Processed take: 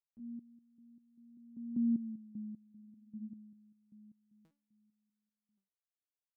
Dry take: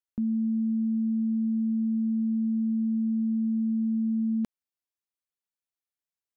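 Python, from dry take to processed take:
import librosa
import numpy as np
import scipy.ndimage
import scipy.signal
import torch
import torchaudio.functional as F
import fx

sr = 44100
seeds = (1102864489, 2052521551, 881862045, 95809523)

y = fx.doppler_pass(x, sr, speed_mps=18, closest_m=2.9, pass_at_s=2.09)
y = y + 10.0 ** (-24.0 / 20.0) * np.pad(y, (int(1125 * sr / 1000.0), 0))[:len(y)]
y = fx.resonator_held(y, sr, hz=5.1, low_hz=110.0, high_hz=420.0)
y = y * 10.0 ** (5.0 / 20.0)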